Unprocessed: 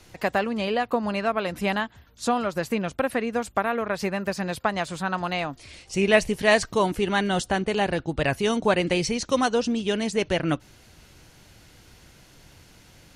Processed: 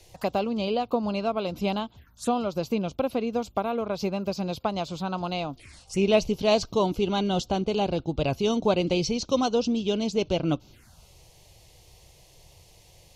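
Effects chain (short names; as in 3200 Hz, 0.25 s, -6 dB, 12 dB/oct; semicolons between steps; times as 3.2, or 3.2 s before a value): envelope phaser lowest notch 200 Hz, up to 1800 Hz, full sweep at -28 dBFS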